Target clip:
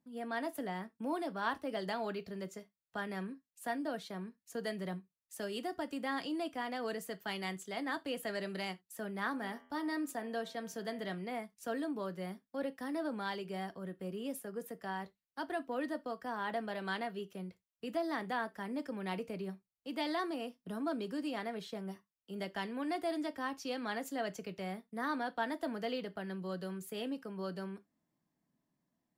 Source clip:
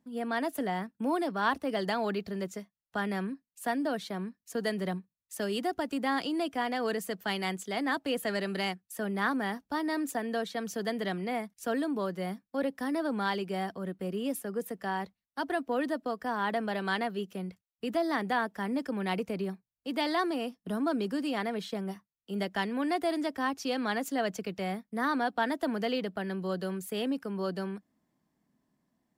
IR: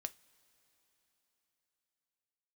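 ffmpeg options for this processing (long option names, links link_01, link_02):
-filter_complex "[0:a]asettb=1/sr,asplit=3[link_01][link_02][link_03];[link_01]atrim=end=9.304[link_04];[link_02]atrim=start=9.3:end=11.14,asetpts=PTS-STARTPTS,afade=type=in:duration=0.004:curve=qsin,afade=type=out:start_time=1.836:duration=0.004:curve=qsin,bandreject=frequency=83.32:width_type=h:width=4,bandreject=frequency=166.64:width_type=h:width=4,bandreject=frequency=249.96:width_type=h:width=4,bandreject=frequency=333.28:width_type=h:width=4,bandreject=frequency=416.6:width_type=h:width=4,bandreject=frequency=499.92:width_type=h:width=4,bandreject=frequency=583.24:width_type=h:width=4,bandreject=frequency=666.56:width_type=h:width=4,bandreject=frequency=749.88:width_type=h:width=4,bandreject=frequency=833.2:width_type=h:width=4,bandreject=frequency=916.52:width_type=h:width=4,bandreject=frequency=999.84:width_type=h:width=4,bandreject=frequency=1083.16:width_type=h:width=4,bandreject=frequency=1166.48:width_type=h:width=4,bandreject=frequency=1249.8:width_type=h:width=4,bandreject=frequency=1333.12:width_type=h:width=4,bandreject=frequency=1416.44:width_type=h:width=4,bandreject=frequency=1499.76:width_type=h:width=4,bandreject=frequency=1583.08:width_type=h:width=4,bandreject=frequency=1666.4:width_type=h:width=4,bandreject=frequency=1749.72:width_type=h:width=4,bandreject=frequency=1833.04:width_type=h:width=4,bandreject=frequency=1916.36:width_type=h:width=4,bandreject=frequency=1999.68:width_type=h:width=4,bandreject=frequency=2083:width_type=h:width=4,bandreject=frequency=2166.32:width_type=h:width=4,bandreject=frequency=2249.64:width_type=h:width=4,bandreject=frequency=2332.96:width_type=h:width=4,bandreject=frequency=2416.28:width_type=h:width=4,bandreject=frequency=2499.6:width_type=h:width=4,bandreject=frequency=2582.92:width_type=h:width=4,bandreject=frequency=2666.24:width_type=h:width=4,bandreject=frequency=2749.56:width_type=h:width=4,bandreject=frequency=2832.88:width_type=h:width=4,bandreject=frequency=2916.2:width_type=h:width=4,bandreject=frequency=2999.52:width_type=h:width=4,bandreject=frequency=3082.84:width_type=h:width=4,bandreject=frequency=3166.16:width_type=h:width=4,bandreject=frequency=3249.48:width_type=h:width=4[link_05];[link_03]atrim=start=11.136[link_06];[link_04][link_05]acrossfade=duration=0.004:curve1=hsin:curve2=qsin[link_07];[link_07][link_06]acrossfade=duration=0.004:curve1=qsin:curve2=hsin[link_08];[1:a]atrim=start_sample=2205,atrim=end_sample=3969[link_09];[link_08][link_09]afir=irnorm=-1:irlink=0,volume=-4dB"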